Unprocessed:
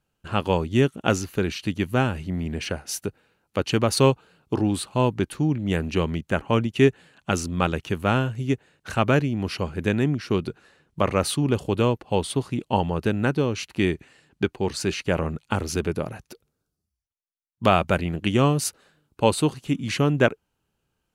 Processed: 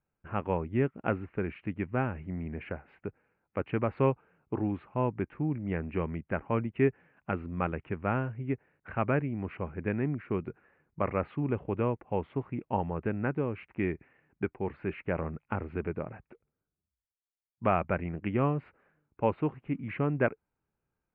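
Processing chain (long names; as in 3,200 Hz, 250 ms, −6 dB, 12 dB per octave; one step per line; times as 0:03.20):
elliptic low-pass filter 2,300 Hz, stop band 60 dB
level −7.5 dB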